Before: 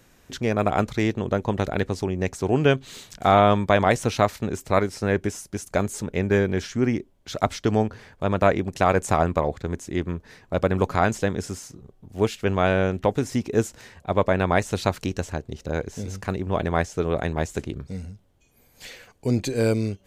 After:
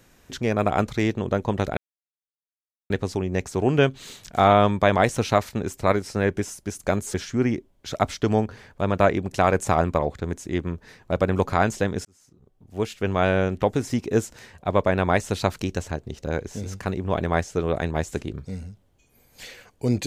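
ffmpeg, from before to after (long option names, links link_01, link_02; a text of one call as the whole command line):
ffmpeg -i in.wav -filter_complex "[0:a]asplit=4[link_01][link_02][link_03][link_04];[link_01]atrim=end=1.77,asetpts=PTS-STARTPTS,afade=type=out:start_time=1.766:duration=0.004:curve=hsin,apad=pad_dur=1.13[link_05];[link_02]atrim=start=1.77:end=6.012,asetpts=PTS-STARTPTS,afade=type=in:duration=0.004:curve=hsin[link_06];[link_03]atrim=start=6.558:end=11.47,asetpts=PTS-STARTPTS,afade=type=out:start_time=4.908:duration=0.004:curve=hsin[link_07];[link_04]atrim=start=11.47,asetpts=PTS-STARTPTS,afade=type=in:duration=1.23[link_08];[link_05][link_06]concat=n=2:v=0:a=1[link_09];[link_07][link_08]concat=n=2:v=0:a=1[link_10];[link_09][link_10]acrossfade=duration=0.004:curve1=hsin:curve2=hsin" out.wav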